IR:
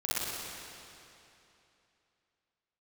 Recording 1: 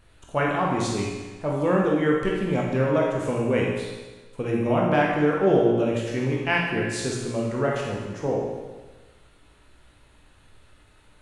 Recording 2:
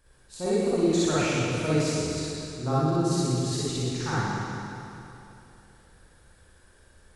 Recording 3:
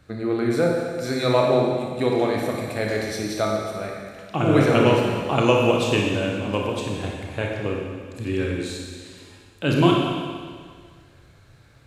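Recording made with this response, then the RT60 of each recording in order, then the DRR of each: 2; 1.3 s, 2.9 s, 1.8 s; -3.0 dB, -10.0 dB, -1.0 dB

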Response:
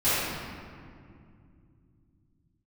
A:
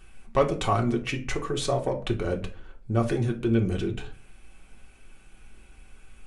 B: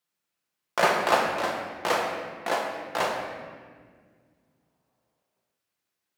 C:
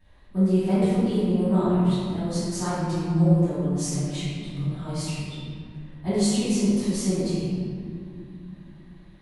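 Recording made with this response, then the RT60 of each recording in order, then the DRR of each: C; 0.45 s, 1.8 s, 2.4 s; 1.0 dB, -1.0 dB, -17.5 dB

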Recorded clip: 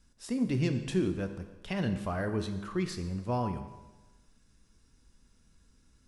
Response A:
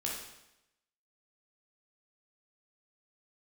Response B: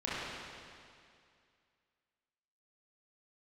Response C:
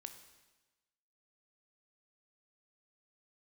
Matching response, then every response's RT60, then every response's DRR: C; 0.90 s, 2.3 s, 1.2 s; -3.5 dB, -9.5 dB, 7.5 dB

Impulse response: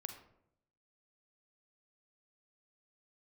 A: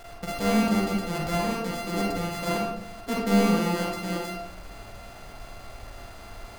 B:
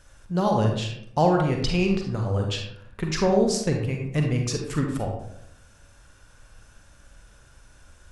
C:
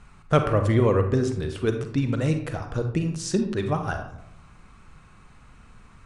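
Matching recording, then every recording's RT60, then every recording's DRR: C; 0.75 s, 0.75 s, 0.75 s; -3.0 dB, 1.5 dB, 6.0 dB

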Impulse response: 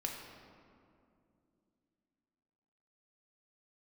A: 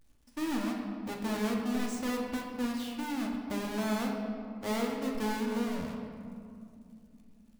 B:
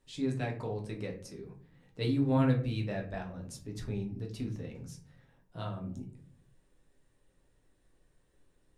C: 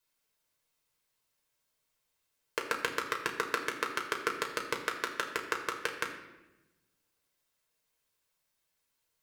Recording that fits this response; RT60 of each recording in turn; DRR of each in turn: A; 2.5 s, 0.50 s, 1.0 s; -0.5 dB, 0.5 dB, 1.0 dB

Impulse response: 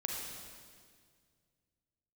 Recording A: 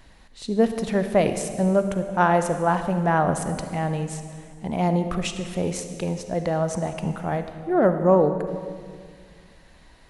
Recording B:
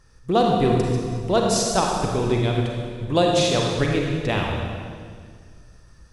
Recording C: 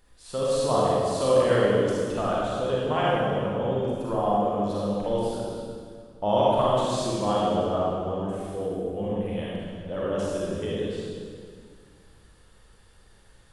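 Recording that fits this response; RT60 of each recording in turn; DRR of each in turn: B; 1.9 s, 1.9 s, 1.9 s; 8.0 dB, -1.0 dB, -7.0 dB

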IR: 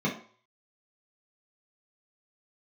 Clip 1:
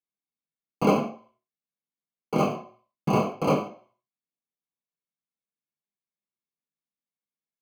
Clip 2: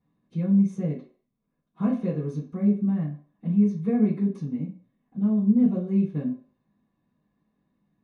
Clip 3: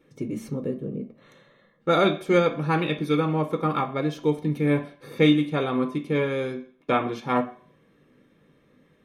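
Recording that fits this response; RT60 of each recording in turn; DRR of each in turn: 1; 0.50 s, 0.50 s, 0.50 s; -5.5 dB, -11.5 dB, 4.5 dB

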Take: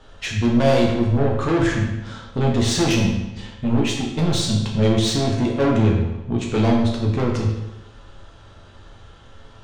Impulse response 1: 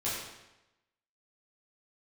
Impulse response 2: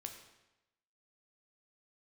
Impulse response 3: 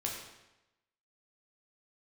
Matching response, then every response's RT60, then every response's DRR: 3; 0.95 s, 0.95 s, 0.95 s; -9.5 dB, 4.0 dB, -2.0 dB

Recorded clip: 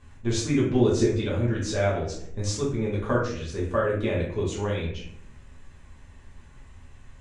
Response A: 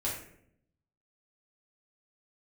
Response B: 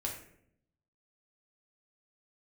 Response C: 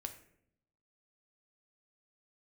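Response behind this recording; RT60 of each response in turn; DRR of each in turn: A; 0.70 s, 0.70 s, 0.70 s; -6.5 dB, -1.5 dB, 6.0 dB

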